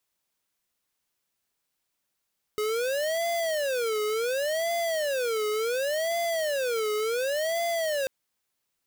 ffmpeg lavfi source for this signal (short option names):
-f lavfi -i "aevalsrc='0.0422*(2*lt(mod((553*t-130/(2*PI*0.69)*sin(2*PI*0.69*t)),1),0.5)-1)':d=5.49:s=44100"